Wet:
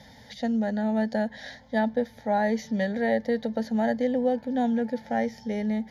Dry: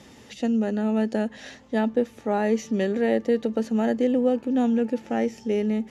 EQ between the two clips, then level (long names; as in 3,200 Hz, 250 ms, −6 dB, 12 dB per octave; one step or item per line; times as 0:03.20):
phaser with its sweep stopped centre 1,800 Hz, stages 8
notch filter 5,800 Hz, Q 20
+2.5 dB